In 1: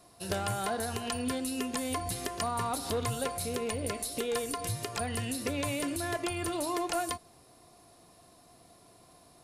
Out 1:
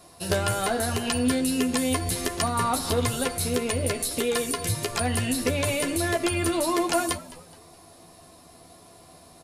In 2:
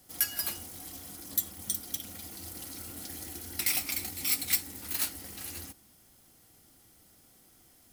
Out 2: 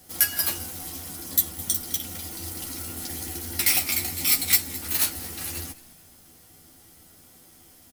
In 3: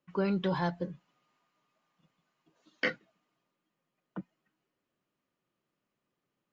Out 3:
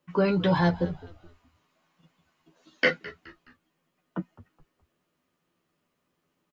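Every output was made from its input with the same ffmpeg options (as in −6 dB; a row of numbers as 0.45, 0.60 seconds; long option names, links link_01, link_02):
-filter_complex "[0:a]asplit=2[link_01][link_02];[link_02]adelay=12,volume=-4.5dB[link_03];[link_01][link_03]amix=inputs=2:normalize=0,asplit=4[link_04][link_05][link_06][link_07];[link_05]adelay=211,afreqshift=-86,volume=-18.5dB[link_08];[link_06]adelay=422,afreqshift=-172,volume=-26.5dB[link_09];[link_07]adelay=633,afreqshift=-258,volume=-34.4dB[link_10];[link_04][link_08][link_09][link_10]amix=inputs=4:normalize=0,volume=6.5dB"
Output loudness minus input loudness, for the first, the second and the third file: +8.0, +8.0, +6.5 LU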